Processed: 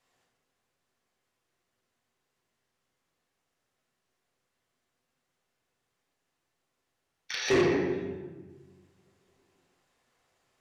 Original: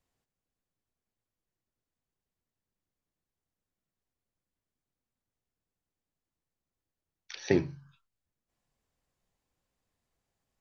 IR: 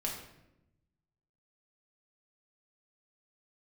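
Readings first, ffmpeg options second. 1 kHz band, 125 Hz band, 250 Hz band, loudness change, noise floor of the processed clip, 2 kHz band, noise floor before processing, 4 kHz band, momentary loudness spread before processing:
+11.5 dB, +0.5 dB, +4.0 dB, +1.0 dB, -82 dBFS, +9.0 dB, under -85 dBFS, +10.5 dB, 16 LU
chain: -filter_complex "[1:a]atrim=start_sample=2205,asetrate=26460,aresample=44100[a];[0:a][a]afir=irnorm=-1:irlink=0,asplit=2[b][c];[c]highpass=f=720:p=1,volume=24dB,asoftclip=type=tanh:threshold=-7dB[d];[b][d]amix=inputs=2:normalize=0,lowpass=f=4.4k:p=1,volume=-6dB,volume=-8.5dB"

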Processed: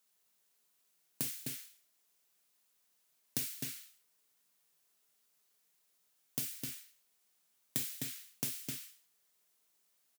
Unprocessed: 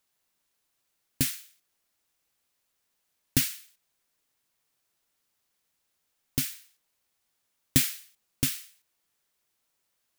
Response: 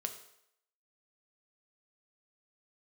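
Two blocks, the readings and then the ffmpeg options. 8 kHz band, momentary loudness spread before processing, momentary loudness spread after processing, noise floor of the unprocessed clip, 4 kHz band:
-9.0 dB, 17 LU, 12 LU, -78 dBFS, -10.5 dB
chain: -filter_complex "[0:a]asplit=2[a][b];[b]adelay=256.6,volume=-6dB,highshelf=f=4k:g=-5.77[c];[a][c]amix=inputs=2:normalize=0,asplit=2[d][e];[e]acrusher=bits=2:mode=log:mix=0:aa=0.000001,volume=-11.5dB[f];[d][f]amix=inputs=2:normalize=0,highshelf=f=4.8k:g=6.5,acompressor=threshold=-30dB:ratio=4,highpass=f=130:w=0.5412,highpass=f=130:w=1.3066[g];[1:a]atrim=start_sample=2205,atrim=end_sample=3087[h];[g][h]afir=irnorm=-1:irlink=0,volume=-4.5dB"

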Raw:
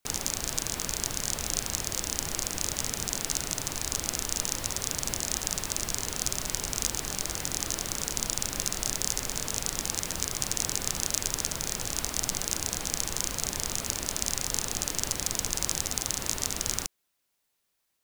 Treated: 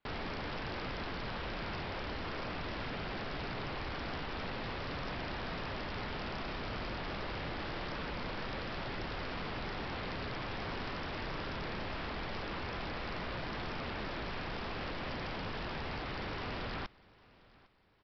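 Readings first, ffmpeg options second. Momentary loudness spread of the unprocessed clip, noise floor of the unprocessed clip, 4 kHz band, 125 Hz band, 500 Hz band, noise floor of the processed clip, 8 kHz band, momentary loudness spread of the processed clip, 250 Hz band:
2 LU, -77 dBFS, -11.0 dB, -2.5 dB, -1.0 dB, -62 dBFS, under -40 dB, 0 LU, -1.5 dB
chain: -af "lowpass=2.4k,aresample=11025,aeval=exprs='0.0141*(abs(mod(val(0)/0.0141+3,4)-2)-1)':c=same,aresample=44100,aecho=1:1:804|1608|2412:0.0668|0.0261|0.0102,volume=2.5dB"

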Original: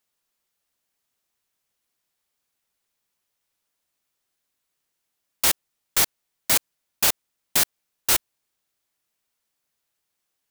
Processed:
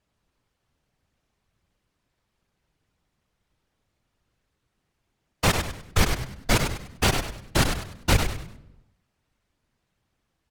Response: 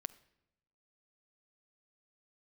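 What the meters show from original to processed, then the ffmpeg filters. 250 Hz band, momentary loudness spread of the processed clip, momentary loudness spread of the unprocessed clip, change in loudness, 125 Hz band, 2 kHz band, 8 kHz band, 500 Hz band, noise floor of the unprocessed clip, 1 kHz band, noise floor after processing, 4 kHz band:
+12.0 dB, 7 LU, 8 LU, -3.5 dB, +19.0 dB, +2.5 dB, -7.5 dB, +7.5 dB, -79 dBFS, +5.0 dB, -78 dBFS, -1.5 dB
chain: -filter_complex "[0:a]aemphasis=mode=reproduction:type=riaa[a];[1:a]atrim=start_sample=2205[b];[a][b]afir=irnorm=-1:irlink=0,aeval=exprs='0.251*sin(PI/2*2.24*val(0)/0.251)':c=same,afftfilt=real='hypot(re,im)*cos(2*PI*random(0))':imag='hypot(re,im)*sin(2*PI*random(1))':win_size=512:overlap=0.75,asplit=5[c][d][e][f][g];[d]adelay=99,afreqshift=-72,volume=-6.5dB[h];[e]adelay=198,afreqshift=-144,volume=-15.9dB[i];[f]adelay=297,afreqshift=-216,volume=-25.2dB[j];[g]adelay=396,afreqshift=-288,volume=-34.6dB[k];[c][h][i][j][k]amix=inputs=5:normalize=0,volume=5dB"

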